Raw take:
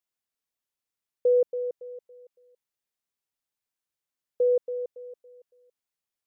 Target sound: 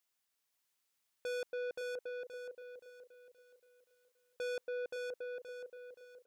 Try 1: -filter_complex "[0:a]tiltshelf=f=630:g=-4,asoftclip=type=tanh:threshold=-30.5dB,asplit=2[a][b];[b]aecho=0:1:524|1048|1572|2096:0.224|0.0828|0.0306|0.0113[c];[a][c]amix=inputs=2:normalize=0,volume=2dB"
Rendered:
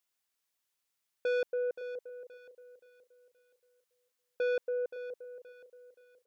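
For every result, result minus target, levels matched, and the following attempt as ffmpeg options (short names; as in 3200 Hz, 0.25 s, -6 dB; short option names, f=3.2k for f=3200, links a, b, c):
echo-to-direct -10 dB; soft clip: distortion -4 dB
-filter_complex "[0:a]tiltshelf=f=630:g=-4,asoftclip=type=tanh:threshold=-30.5dB,asplit=2[a][b];[b]aecho=0:1:524|1048|1572|2096|2620:0.708|0.262|0.0969|0.0359|0.0133[c];[a][c]amix=inputs=2:normalize=0,volume=2dB"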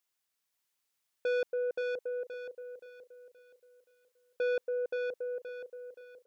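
soft clip: distortion -4 dB
-filter_complex "[0:a]tiltshelf=f=630:g=-4,asoftclip=type=tanh:threshold=-39.5dB,asplit=2[a][b];[b]aecho=0:1:524|1048|1572|2096|2620:0.708|0.262|0.0969|0.0359|0.0133[c];[a][c]amix=inputs=2:normalize=0,volume=2dB"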